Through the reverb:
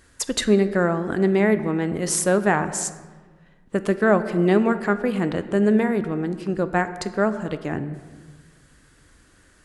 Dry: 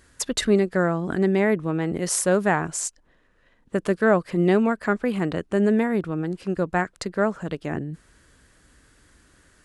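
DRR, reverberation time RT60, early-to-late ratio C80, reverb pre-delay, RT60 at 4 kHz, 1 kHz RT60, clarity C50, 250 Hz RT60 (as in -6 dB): 10.5 dB, 1.4 s, 13.5 dB, 3 ms, 0.90 s, 1.4 s, 12.5 dB, 1.8 s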